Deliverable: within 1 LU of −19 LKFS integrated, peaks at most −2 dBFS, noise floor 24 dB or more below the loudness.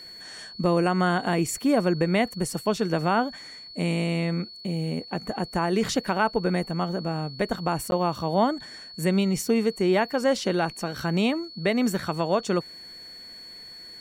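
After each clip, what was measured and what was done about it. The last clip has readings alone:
number of dropouts 1; longest dropout 11 ms; interfering tone 4,400 Hz; level of the tone −41 dBFS; integrated loudness −25.5 LKFS; sample peak −9.5 dBFS; target loudness −19.0 LKFS
→ repair the gap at 0:07.91, 11 ms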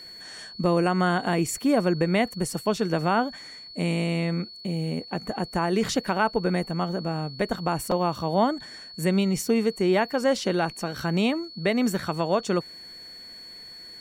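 number of dropouts 0; interfering tone 4,400 Hz; level of the tone −41 dBFS
→ notch filter 4,400 Hz, Q 30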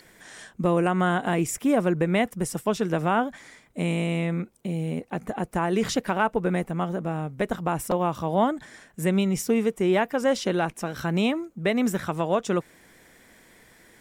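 interfering tone none found; integrated loudness −25.5 LKFS; sample peak −9.5 dBFS; target loudness −19.0 LKFS
→ level +6.5 dB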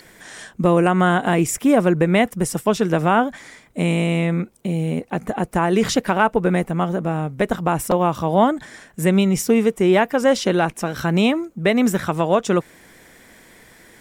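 integrated loudness −19.0 LKFS; sample peak −3.0 dBFS; background noise floor −50 dBFS

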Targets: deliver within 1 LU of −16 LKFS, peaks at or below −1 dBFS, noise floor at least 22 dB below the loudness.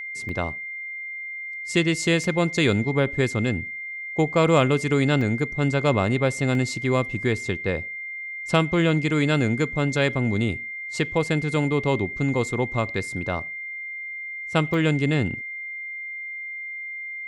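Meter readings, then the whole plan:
number of dropouts 5; longest dropout 1.5 ms; interfering tone 2,100 Hz; level of the tone −31 dBFS; integrated loudness −24.0 LKFS; sample peak −5.5 dBFS; target loudness −16.0 LKFS
→ repair the gap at 0:00.29/0:02.24/0:05.21/0:06.55/0:14.74, 1.5 ms
notch filter 2,100 Hz, Q 30
level +8 dB
brickwall limiter −1 dBFS

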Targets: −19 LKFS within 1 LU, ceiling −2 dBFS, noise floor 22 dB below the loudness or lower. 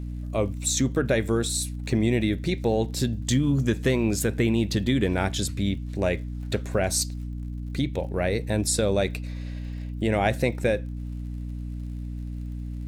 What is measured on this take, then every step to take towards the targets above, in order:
crackle rate 51 per second; mains hum 60 Hz; hum harmonics up to 300 Hz; level of the hum −30 dBFS; integrated loudness −26.5 LKFS; sample peak −10.0 dBFS; target loudness −19.0 LKFS
→ click removal
hum removal 60 Hz, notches 5
level +7.5 dB

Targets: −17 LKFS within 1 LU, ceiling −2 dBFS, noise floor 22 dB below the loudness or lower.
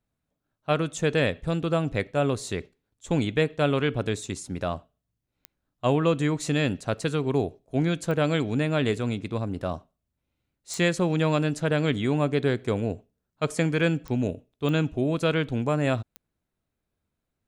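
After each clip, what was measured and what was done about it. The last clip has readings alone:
number of clicks 6; integrated loudness −26.5 LKFS; sample peak −9.5 dBFS; target loudness −17.0 LKFS
→ click removal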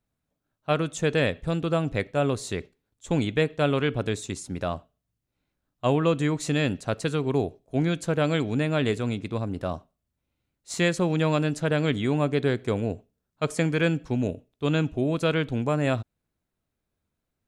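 number of clicks 0; integrated loudness −26.5 LKFS; sample peak −9.5 dBFS; target loudness −17.0 LKFS
→ level +9.5 dB
brickwall limiter −2 dBFS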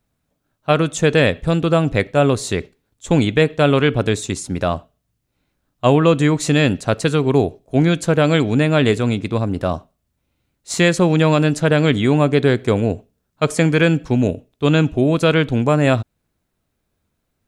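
integrated loudness −17.0 LKFS; sample peak −2.0 dBFS; background noise floor −73 dBFS

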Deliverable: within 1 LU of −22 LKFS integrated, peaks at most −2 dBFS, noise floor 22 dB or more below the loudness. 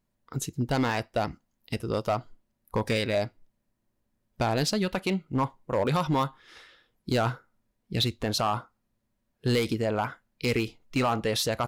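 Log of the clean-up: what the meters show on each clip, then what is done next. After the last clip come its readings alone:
share of clipped samples 1.1%; peaks flattened at −19.0 dBFS; integrated loudness −29.0 LKFS; sample peak −19.0 dBFS; target loudness −22.0 LKFS
→ clipped peaks rebuilt −19 dBFS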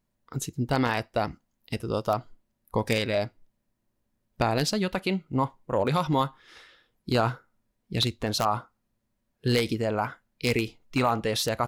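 share of clipped samples 0.0%; integrated loudness −28.0 LKFS; sample peak −10.0 dBFS; target loudness −22.0 LKFS
→ level +6 dB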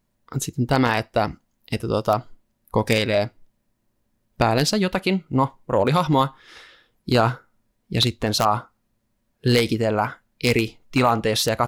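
integrated loudness −22.0 LKFS; sample peak −4.0 dBFS; background noise floor −72 dBFS

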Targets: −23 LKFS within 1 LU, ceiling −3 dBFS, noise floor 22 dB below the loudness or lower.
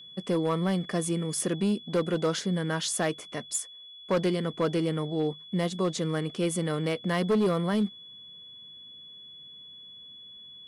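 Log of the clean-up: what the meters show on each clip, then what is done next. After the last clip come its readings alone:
share of clipped samples 1.2%; peaks flattened at −20.0 dBFS; interfering tone 3,400 Hz; level of the tone −45 dBFS; integrated loudness −28.5 LKFS; sample peak −20.0 dBFS; target loudness −23.0 LKFS
→ clipped peaks rebuilt −20 dBFS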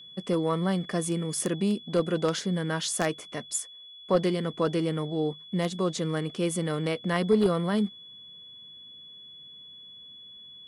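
share of clipped samples 0.0%; interfering tone 3,400 Hz; level of the tone −45 dBFS
→ notch filter 3,400 Hz, Q 30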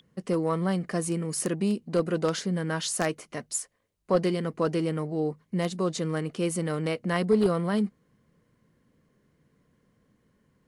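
interfering tone none found; integrated loudness −28.5 LKFS; sample peak −11.0 dBFS; target loudness −23.0 LKFS
→ level +5.5 dB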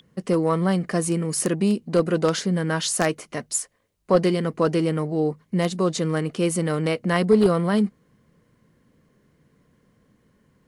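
integrated loudness −23.0 LKFS; sample peak −5.5 dBFS; background noise floor −65 dBFS

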